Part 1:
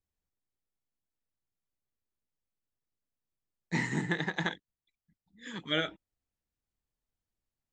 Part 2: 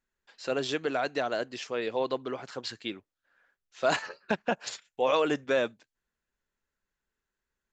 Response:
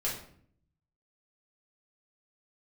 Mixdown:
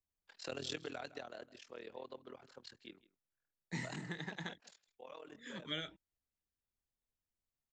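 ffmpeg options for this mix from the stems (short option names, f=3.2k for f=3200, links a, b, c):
-filter_complex "[0:a]volume=-6dB[a];[1:a]agate=range=-33dB:threshold=-59dB:ratio=3:detection=peak,tremolo=f=40:d=0.919,volume=-1.5dB,afade=t=out:st=0.77:d=0.54:silence=0.223872,afade=t=out:st=4.19:d=0.74:silence=0.354813,asplit=3[b][c][d];[c]volume=-20dB[e];[d]apad=whole_len=340618[f];[a][f]sidechaincompress=threshold=-42dB:ratio=8:attack=16:release=812[g];[e]aecho=0:1:160:1[h];[g][b][h]amix=inputs=3:normalize=0,acrossover=split=150|3000[i][j][k];[j]acompressor=threshold=-43dB:ratio=4[l];[i][l][k]amix=inputs=3:normalize=0"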